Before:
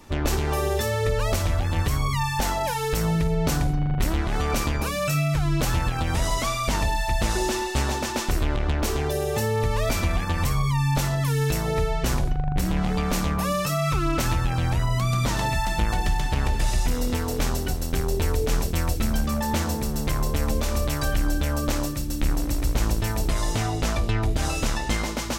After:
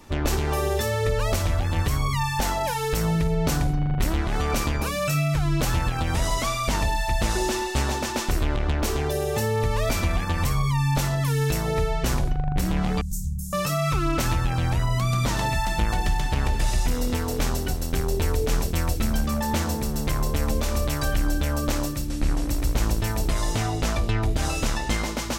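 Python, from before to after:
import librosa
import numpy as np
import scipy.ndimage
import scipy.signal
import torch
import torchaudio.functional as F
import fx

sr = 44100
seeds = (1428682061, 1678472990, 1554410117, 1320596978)

y = fx.ellip_bandstop(x, sr, low_hz=140.0, high_hz=7100.0, order=3, stop_db=50, at=(13.01, 13.53))
y = fx.delta_mod(y, sr, bps=64000, step_db=-42.0, at=(22.08, 22.48))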